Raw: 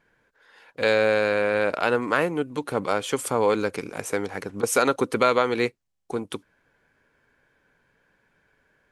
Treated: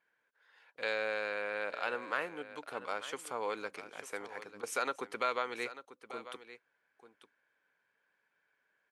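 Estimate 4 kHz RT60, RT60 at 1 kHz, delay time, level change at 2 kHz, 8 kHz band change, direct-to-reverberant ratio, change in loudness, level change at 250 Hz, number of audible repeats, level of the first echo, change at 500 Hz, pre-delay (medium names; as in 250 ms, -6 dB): no reverb, no reverb, 893 ms, -10.5 dB, -15.5 dB, no reverb, -14.0 dB, -21.0 dB, 1, -14.0 dB, -16.0 dB, no reverb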